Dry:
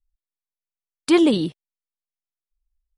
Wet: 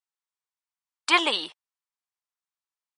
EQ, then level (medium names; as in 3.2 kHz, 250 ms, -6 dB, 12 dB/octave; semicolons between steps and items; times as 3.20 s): brick-wall FIR low-pass 9.8 kHz; dynamic bell 2.6 kHz, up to +6 dB, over -37 dBFS, Q 1; resonant high-pass 960 Hz, resonance Q 2.2; 0.0 dB